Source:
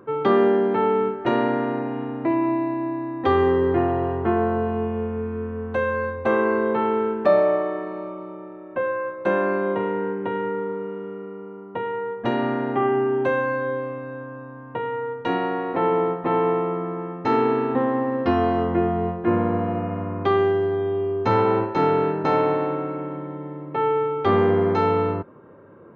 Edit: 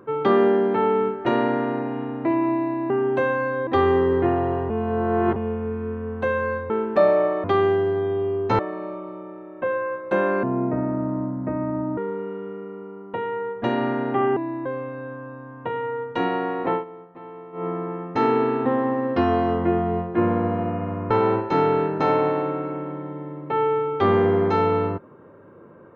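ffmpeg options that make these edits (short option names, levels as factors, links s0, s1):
-filter_complex "[0:a]asplit=15[s0][s1][s2][s3][s4][s5][s6][s7][s8][s9][s10][s11][s12][s13][s14];[s0]atrim=end=2.902[s15];[s1]atrim=start=12.978:end=13.752[s16];[s2]atrim=start=3.188:end=4.222[s17];[s3]atrim=start=4.218:end=4.882,asetpts=PTS-STARTPTS,areverse[s18];[s4]atrim=start=4.878:end=6.222[s19];[s5]atrim=start=6.988:end=7.732[s20];[s6]atrim=start=20.198:end=21.352[s21];[s7]atrim=start=7.728:end=9.574[s22];[s8]atrim=start=9.57:end=10.59,asetpts=PTS-STARTPTS,asetrate=29106,aresample=44100[s23];[s9]atrim=start=10.586:end=12.982[s24];[s10]atrim=start=2.898:end=3.192[s25];[s11]atrim=start=13.748:end=15.94,asetpts=PTS-STARTPTS,afade=t=out:st=2.052:d=0.14:silence=0.112202[s26];[s12]atrim=start=15.94:end=16.62,asetpts=PTS-STARTPTS,volume=0.112[s27];[s13]atrim=start=16.62:end=20.202,asetpts=PTS-STARTPTS,afade=t=in:d=0.14:silence=0.112202[s28];[s14]atrim=start=21.348[s29];[s15][s16]acrossfade=d=0.004:c1=hsin:c2=hsin[s30];[s30][s17]acrossfade=d=0.004:c1=hsin:c2=hsin[s31];[s31][s18]acrossfade=d=0.004:c1=hsin:c2=hsin[s32];[s32][s19]acrossfade=d=0.004:c1=hsin:c2=hsin[s33];[s33][s20]acrossfade=d=0.004:c1=hsin:c2=hsin[s34];[s34][s21]acrossfade=d=0.004:c1=hsin:c2=hsin[s35];[s35][s22]acrossfade=d=0.004:c1=hsin:c2=hsin[s36];[s36][s23]acrossfade=d=0.004:c1=hsin:c2=hsin[s37];[s37][s24]acrossfade=d=0.004:c1=hsin:c2=hsin[s38];[s38][s25]acrossfade=d=0.004:c1=hsin:c2=hsin[s39];[s26][s27][s28]concat=n=3:v=0:a=1[s40];[s39][s40]acrossfade=d=0.004:c1=hsin:c2=hsin[s41];[s41][s29]acrossfade=d=0.004:c1=hsin:c2=hsin"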